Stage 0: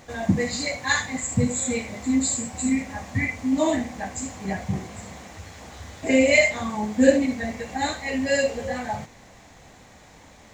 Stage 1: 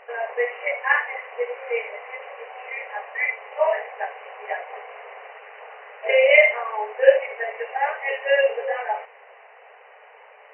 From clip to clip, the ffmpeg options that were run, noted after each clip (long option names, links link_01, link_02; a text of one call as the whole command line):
ffmpeg -i in.wav -af "afftfilt=real='re*between(b*sr/4096,400,3000)':imag='im*between(b*sr/4096,400,3000)':win_size=4096:overlap=0.75,volume=4dB" out.wav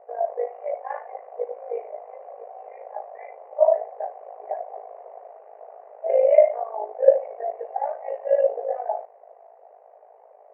ffmpeg -i in.wav -af "tremolo=f=53:d=0.71,lowpass=frequency=670:width_type=q:width=4.9,volume=-6dB" out.wav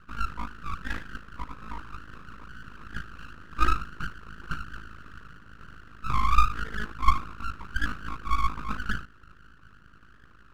ffmpeg -i in.wav -af "highpass=360,equalizer=frequency=470:width_type=q:width=4:gain=-8,equalizer=frequency=660:width_type=q:width=4:gain=-4,equalizer=frequency=950:width_type=q:width=4:gain=4,equalizer=frequency=1400:width_type=q:width=4:gain=-9,lowpass=frequency=2000:width=0.5412,lowpass=frequency=2000:width=1.3066,aeval=exprs='abs(val(0))':channel_layout=same,volume=2.5dB" out.wav